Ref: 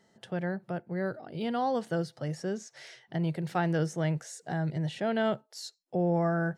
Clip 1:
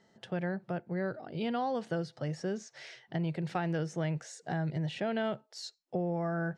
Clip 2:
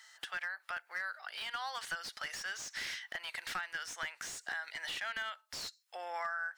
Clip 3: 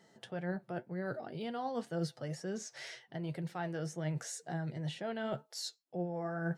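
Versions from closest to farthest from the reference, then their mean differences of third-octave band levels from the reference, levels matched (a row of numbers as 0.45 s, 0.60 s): 1, 3, 2; 2.0 dB, 3.5 dB, 15.5 dB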